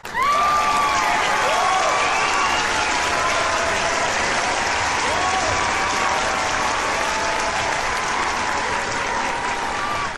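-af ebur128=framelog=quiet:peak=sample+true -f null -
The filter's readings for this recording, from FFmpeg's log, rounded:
Integrated loudness:
  I:         -19.3 LUFS
  Threshold: -29.3 LUFS
Loudness range:
  LRA:         2.8 LU
  Threshold: -39.3 LUFS
  LRA low:   -20.9 LUFS
  LRA high:  -18.0 LUFS
Sample peak:
  Peak:       -6.5 dBFS
True peak:
  Peak:       -6.4 dBFS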